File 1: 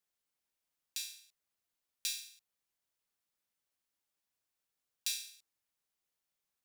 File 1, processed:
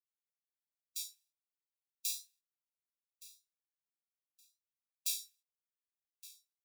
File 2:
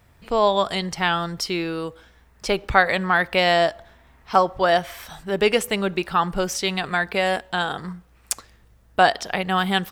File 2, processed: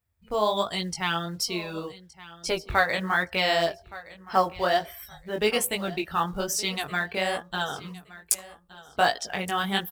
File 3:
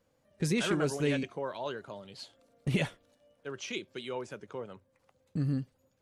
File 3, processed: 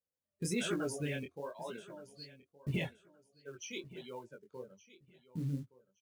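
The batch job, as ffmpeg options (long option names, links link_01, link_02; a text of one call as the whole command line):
ffmpeg -i in.wav -filter_complex "[0:a]aemphasis=mode=production:type=50kf,afftdn=noise_reduction=22:noise_floor=-35,equalizer=frequency=82:width=6.8:gain=10,acrusher=bits=7:mode=log:mix=0:aa=0.000001,flanger=delay=16.5:depth=7.5:speed=1.2,asplit=2[link_01][link_02];[link_02]aecho=0:1:1169|2338:0.119|0.0273[link_03];[link_01][link_03]amix=inputs=2:normalize=0,volume=-3.5dB" out.wav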